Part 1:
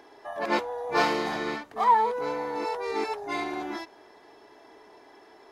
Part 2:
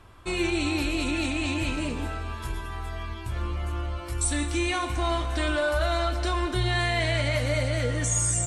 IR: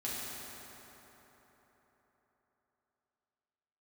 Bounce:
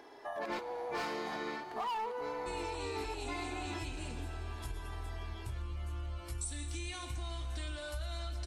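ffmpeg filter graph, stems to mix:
-filter_complex "[0:a]asoftclip=type=hard:threshold=-21.5dB,volume=-3dB,asplit=2[a][b];[b]volume=-15.5dB[c];[1:a]acrossover=split=140|3000[d][e][f];[e]acompressor=threshold=-46dB:ratio=2[g];[d][g][f]amix=inputs=3:normalize=0,adelay=2200,volume=-5dB[h];[2:a]atrim=start_sample=2205[i];[c][i]afir=irnorm=-1:irlink=0[j];[a][h][j]amix=inputs=3:normalize=0,acompressor=threshold=-37dB:ratio=4"

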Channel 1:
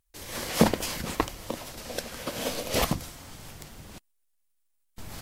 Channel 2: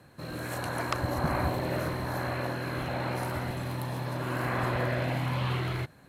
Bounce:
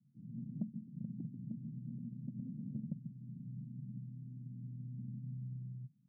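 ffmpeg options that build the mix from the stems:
-filter_complex "[0:a]volume=2.5dB,asplit=2[a][b];[b]volume=-9dB[c];[1:a]volume=-10.5dB[d];[c]aecho=0:1:139:1[e];[a][d][e]amix=inputs=3:normalize=0,asuperpass=centerf=170:order=8:qfactor=1.5,acompressor=threshold=-39dB:ratio=6"

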